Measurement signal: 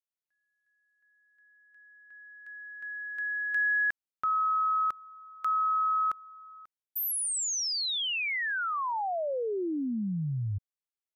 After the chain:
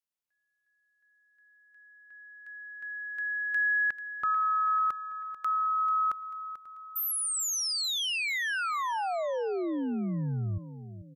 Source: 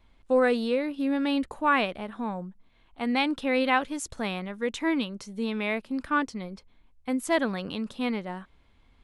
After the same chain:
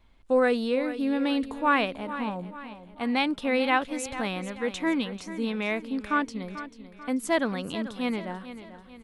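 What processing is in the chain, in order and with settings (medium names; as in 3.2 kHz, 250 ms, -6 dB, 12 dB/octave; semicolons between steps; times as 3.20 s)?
feedback delay 440 ms, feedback 45%, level -13 dB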